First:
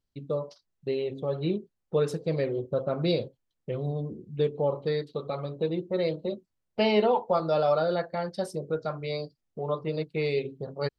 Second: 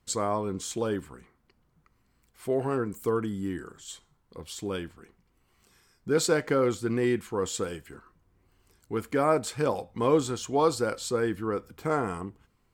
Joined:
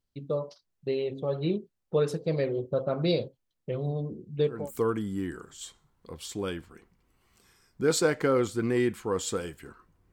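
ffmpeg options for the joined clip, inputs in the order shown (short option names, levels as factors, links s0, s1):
-filter_complex "[0:a]apad=whole_dur=10.12,atrim=end=10.12,atrim=end=4.71,asetpts=PTS-STARTPTS[s0];[1:a]atrim=start=2.74:end=8.39,asetpts=PTS-STARTPTS[s1];[s0][s1]acrossfade=d=0.24:c1=tri:c2=tri"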